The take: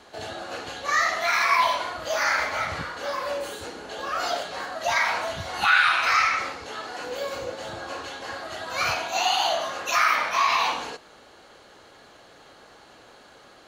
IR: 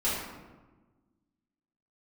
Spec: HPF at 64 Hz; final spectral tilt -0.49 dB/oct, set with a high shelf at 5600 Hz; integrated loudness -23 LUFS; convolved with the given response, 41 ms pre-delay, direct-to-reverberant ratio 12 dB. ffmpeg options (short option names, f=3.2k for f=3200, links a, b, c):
-filter_complex "[0:a]highpass=64,highshelf=f=5.6k:g=6.5,asplit=2[a][b];[1:a]atrim=start_sample=2205,adelay=41[c];[b][c]afir=irnorm=-1:irlink=0,volume=-22dB[d];[a][d]amix=inputs=2:normalize=0,volume=0.5dB"